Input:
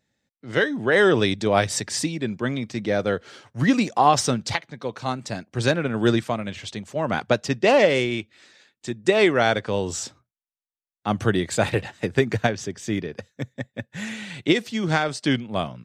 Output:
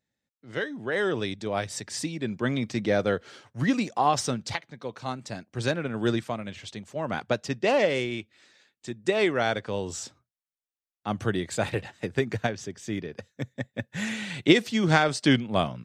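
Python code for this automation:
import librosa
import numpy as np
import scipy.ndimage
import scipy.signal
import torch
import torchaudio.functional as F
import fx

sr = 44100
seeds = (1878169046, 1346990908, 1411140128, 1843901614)

y = fx.gain(x, sr, db=fx.line((1.73, -9.5), (2.65, 0.5), (3.82, -6.0), (12.93, -6.0), (13.99, 1.0)))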